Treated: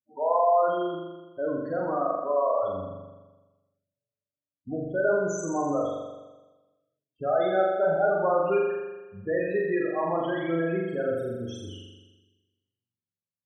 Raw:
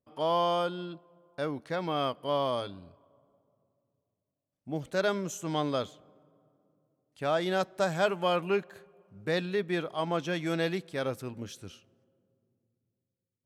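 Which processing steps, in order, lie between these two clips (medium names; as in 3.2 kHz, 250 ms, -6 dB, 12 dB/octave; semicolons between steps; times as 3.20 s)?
gate -54 dBFS, range -23 dB; in parallel at +1 dB: compression, threshold -36 dBFS, peak gain reduction 14 dB; on the sum: dynamic bell 160 Hz, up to -6 dB, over -43 dBFS, Q 0.93; loudest bins only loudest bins 8; on a send: flutter echo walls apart 7.2 m, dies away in 1.2 s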